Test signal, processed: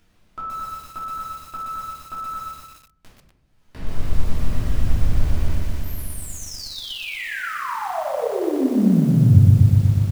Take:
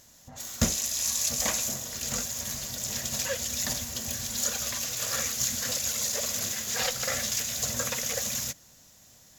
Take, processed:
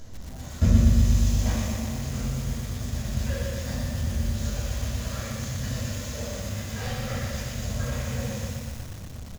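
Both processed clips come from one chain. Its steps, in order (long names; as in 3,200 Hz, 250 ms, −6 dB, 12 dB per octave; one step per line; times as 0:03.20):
RIAA equalisation playback
upward compression, threshold −29 dBFS
repeating echo 81 ms, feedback 49%, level −14 dB
rectangular room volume 280 cubic metres, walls mixed, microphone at 2.9 metres
feedback echo at a low word length 121 ms, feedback 80%, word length 5 bits, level −4 dB
level −12 dB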